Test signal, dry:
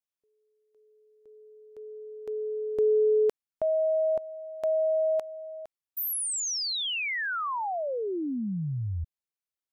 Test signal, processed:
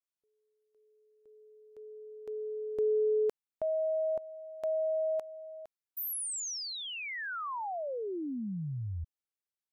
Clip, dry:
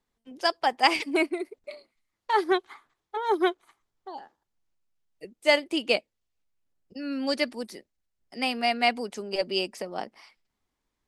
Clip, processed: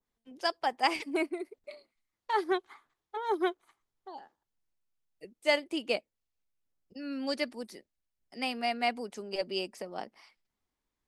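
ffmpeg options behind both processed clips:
-af "adynamicequalizer=threshold=0.00891:dfrequency=3500:dqfactor=0.75:tfrequency=3500:tqfactor=0.75:attack=5:release=100:ratio=0.375:range=2.5:mode=cutabove:tftype=bell,volume=0.531"

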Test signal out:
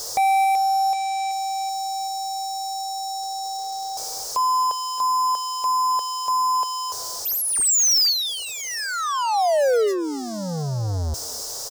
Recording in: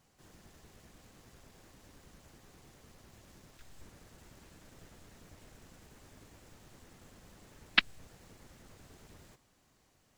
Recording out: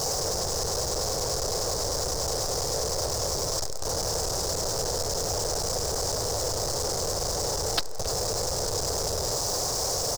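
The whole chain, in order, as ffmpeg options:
-filter_complex "[0:a]aeval=exprs='val(0)+0.5*0.0237*sgn(val(0))':c=same,firequalizer=gain_entry='entry(110,0);entry(230,-13);entry(460,10);entry(2300,-20);entry(5100,13);entry(11000,-1)':delay=0.05:min_phase=1,aeval=exprs='0.0944*(cos(1*acos(clip(val(0)/0.0944,-1,1)))-cos(1*PI/2))+0.0133*(cos(5*acos(clip(val(0)/0.0944,-1,1)))-cos(5*PI/2))':c=same,asplit=2[s0][s1];[s1]adelay=270,highpass=300,lowpass=3400,asoftclip=type=hard:threshold=0.0335,volume=0.282[s2];[s0][s2]amix=inputs=2:normalize=0,volume=1.41"

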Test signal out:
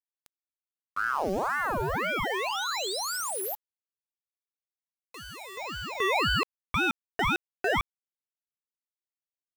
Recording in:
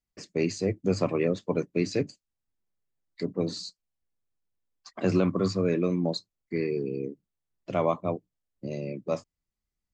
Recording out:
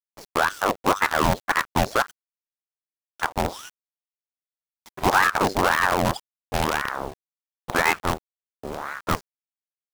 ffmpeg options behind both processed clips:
-af "highshelf=f=2000:g=-4,acrusher=bits=5:dc=4:mix=0:aa=0.000001,aeval=exprs='val(0)*sin(2*PI*930*n/s+930*0.6/1.9*sin(2*PI*1.9*n/s))':c=same,volume=2.37"

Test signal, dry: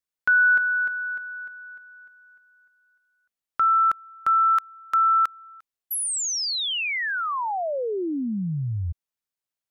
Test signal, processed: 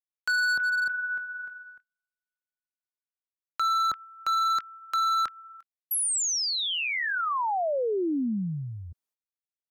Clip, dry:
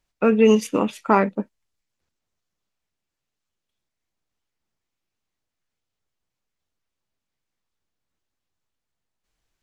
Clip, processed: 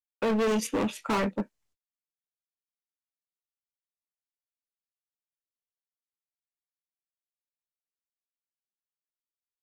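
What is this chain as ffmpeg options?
-filter_complex "[0:a]agate=range=0.00708:threshold=0.01:ratio=16:release=269:detection=rms,acrossover=split=160|1500|4400[s0][s1][s2][s3];[s0]acompressor=threshold=0.00562:ratio=6:release=341[s4];[s2]flanger=delay=19.5:depth=6.5:speed=0.85[s5];[s4][s1][s5][s3]amix=inputs=4:normalize=0,volume=15,asoftclip=hard,volume=0.0668"

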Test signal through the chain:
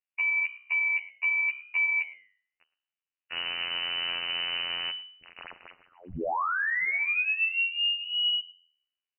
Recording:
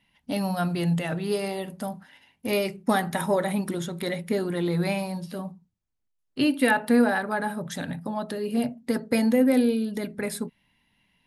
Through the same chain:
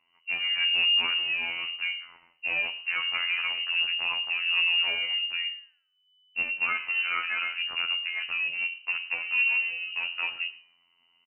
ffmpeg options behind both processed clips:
-filter_complex "[0:a]equalizer=f=360:t=o:w=1.2:g=2,bandreject=f=49.36:t=h:w=4,bandreject=f=98.72:t=h:w=4,bandreject=f=148.08:t=h:w=4,asplit=2[s0][s1];[s1]alimiter=limit=0.15:level=0:latency=1:release=139,volume=1.12[s2];[s0][s2]amix=inputs=2:normalize=0,acompressor=threshold=0.112:ratio=4,asoftclip=type=tanh:threshold=0.126,afftfilt=real='hypot(re,im)*cos(PI*b)':imag='0':win_size=2048:overlap=0.75,adynamicsmooth=sensitivity=3.5:basefreq=1600,flanger=delay=9.8:depth=6.2:regen=88:speed=0.83:shape=sinusoidal,asplit=2[s3][s4];[s4]adelay=110.8,volume=0.1,highshelf=f=4000:g=-2.49[s5];[s3][s5]amix=inputs=2:normalize=0,lowpass=f=2600:t=q:w=0.5098,lowpass=f=2600:t=q:w=0.6013,lowpass=f=2600:t=q:w=0.9,lowpass=f=2600:t=q:w=2.563,afreqshift=-3000,volume=1.68"

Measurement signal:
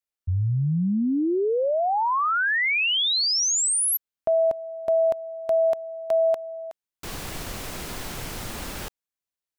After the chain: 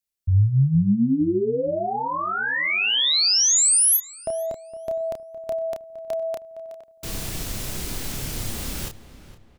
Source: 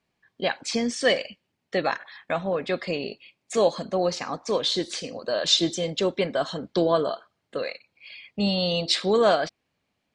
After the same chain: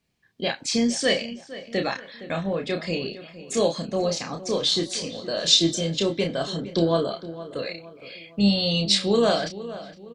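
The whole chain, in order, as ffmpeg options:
-filter_complex "[0:a]equalizer=f=990:w=0.4:g=-10,asplit=2[s0][s1];[s1]adelay=30,volume=0.562[s2];[s0][s2]amix=inputs=2:normalize=0,asplit=2[s3][s4];[s4]adelay=463,lowpass=f=2600:p=1,volume=0.188,asplit=2[s5][s6];[s6]adelay=463,lowpass=f=2600:p=1,volume=0.43,asplit=2[s7][s8];[s8]adelay=463,lowpass=f=2600:p=1,volume=0.43,asplit=2[s9][s10];[s10]adelay=463,lowpass=f=2600:p=1,volume=0.43[s11];[s5][s7][s9][s11]amix=inputs=4:normalize=0[s12];[s3][s12]amix=inputs=2:normalize=0,volume=1.78"

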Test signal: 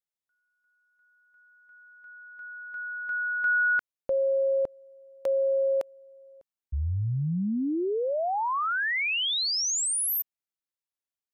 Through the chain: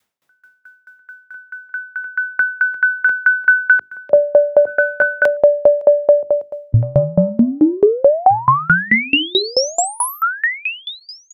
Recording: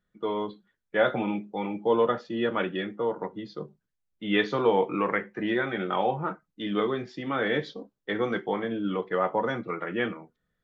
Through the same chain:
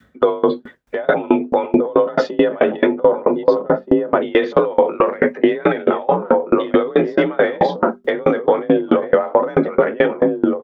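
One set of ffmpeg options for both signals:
-filter_complex "[0:a]asplit=2[s0][s1];[s1]adelay=1574,volume=0.355,highshelf=f=4000:g=-35.4[s2];[s0][s2]amix=inputs=2:normalize=0,acompressor=threshold=0.00708:ratio=4:attack=4.9:release=21:knee=1:detection=rms,bandreject=f=50:t=h:w=6,bandreject=f=100:t=h:w=6,bandreject=f=150:t=h:w=6,bandreject=f=200:t=h:w=6,bandreject=f=250:t=h:w=6,bandreject=f=300:t=h:w=6,bandreject=f=350:t=h:w=6,afreqshift=42,highpass=83,highshelf=f=3400:g=-11,bandreject=f=4200:w=27,adynamicequalizer=threshold=0.002:dfrequency=530:dqfactor=1.1:tfrequency=530:tqfactor=1.1:attack=5:release=100:ratio=0.375:range=3:mode=boostabove:tftype=bell,alimiter=level_in=59.6:limit=0.891:release=50:level=0:latency=1,aeval=exprs='val(0)*pow(10,-28*if(lt(mod(4.6*n/s,1),2*abs(4.6)/1000),1-mod(4.6*n/s,1)/(2*abs(4.6)/1000),(mod(4.6*n/s,1)-2*abs(4.6)/1000)/(1-2*abs(4.6)/1000))/20)':c=same"

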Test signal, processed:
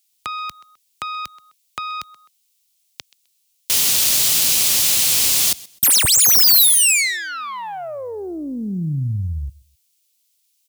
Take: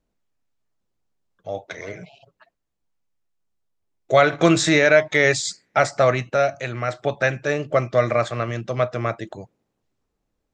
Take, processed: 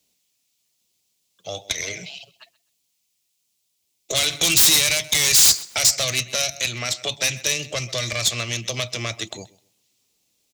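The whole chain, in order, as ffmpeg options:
-filter_complex "[0:a]acrossover=split=100[s0][s1];[s1]acontrast=24[s2];[s0][s2]amix=inputs=2:normalize=0,aexciter=amount=9.5:drive=4.1:freq=2300,aeval=exprs='0.841*(abs(mod(val(0)/0.841+3,4)-2)-1)':c=same,aecho=1:1:129|258:0.0841|0.021,aeval=exprs='(tanh(1.78*val(0)+0.7)-tanh(0.7))/1.78':c=same,acrossover=split=160|3000[s3][s4][s5];[s4]acompressor=threshold=0.0447:ratio=6[s6];[s3][s6][s5]amix=inputs=3:normalize=0,highpass=68,volume=0.841"

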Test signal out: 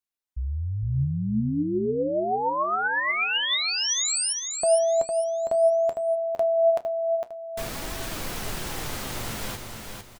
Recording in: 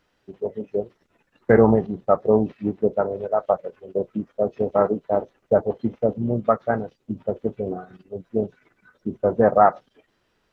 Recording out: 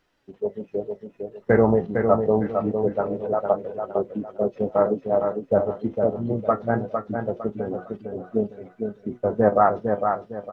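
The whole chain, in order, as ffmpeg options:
-filter_complex "[0:a]flanger=delay=2.5:depth=9.8:regen=64:speed=0.25:shape=triangular,asplit=2[s0][s1];[s1]aecho=0:1:456|912|1368|1824:0.531|0.17|0.0544|0.0174[s2];[s0][s2]amix=inputs=2:normalize=0,volume=1.33"

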